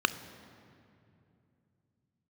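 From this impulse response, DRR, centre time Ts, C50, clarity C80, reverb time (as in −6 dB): 12.5 dB, 10 ms, 14.0 dB, 15.0 dB, 2.7 s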